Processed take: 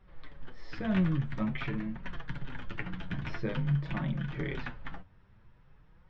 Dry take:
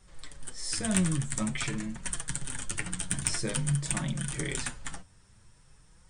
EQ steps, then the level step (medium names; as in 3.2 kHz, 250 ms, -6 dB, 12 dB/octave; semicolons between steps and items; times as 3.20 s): Gaussian low-pass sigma 3 samples; hum notches 50/100 Hz; 0.0 dB